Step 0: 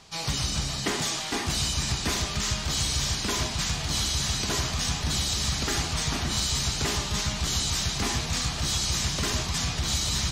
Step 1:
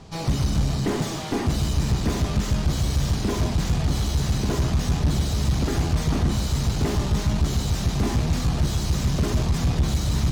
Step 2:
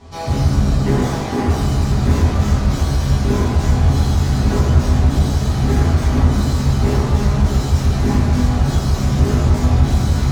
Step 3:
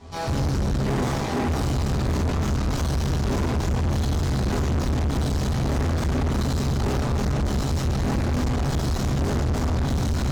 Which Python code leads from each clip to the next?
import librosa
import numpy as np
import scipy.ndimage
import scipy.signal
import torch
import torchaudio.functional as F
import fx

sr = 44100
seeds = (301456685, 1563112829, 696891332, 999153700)

y1 = fx.tube_stage(x, sr, drive_db=31.0, bias=0.5)
y1 = fx.tilt_shelf(y1, sr, db=9.0, hz=870.0)
y1 = F.gain(torch.from_numpy(y1), 7.5).numpy()
y2 = fx.rev_fdn(y1, sr, rt60_s=1.9, lf_ratio=0.85, hf_ratio=0.3, size_ms=72.0, drr_db=-9.5)
y2 = F.gain(torch.from_numpy(y2), -3.5).numpy()
y3 = fx.tube_stage(y2, sr, drive_db=22.0, bias=0.75)
y3 = F.gain(torch.from_numpy(y3), 1.5).numpy()